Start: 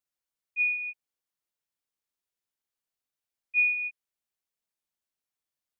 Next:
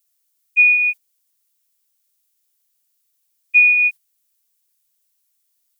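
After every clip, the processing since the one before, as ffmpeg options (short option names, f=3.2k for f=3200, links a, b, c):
-af "agate=range=-8dB:threshold=-44dB:ratio=16:detection=peak,acompressor=threshold=-27dB:ratio=6,crystalizer=i=9:c=0,volume=7dB"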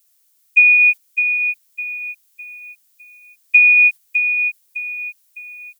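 -filter_complex "[0:a]acompressor=threshold=-17dB:ratio=6,asplit=2[a][b];[b]aecho=0:1:607|1214|1821|2428:0.422|0.152|0.0547|0.0197[c];[a][c]amix=inputs=2:normalize=0,volume=8.5dB"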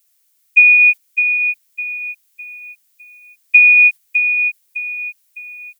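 -af "equalizer=f=2.2k:w=1.5:g=3.5,volume=-1dB"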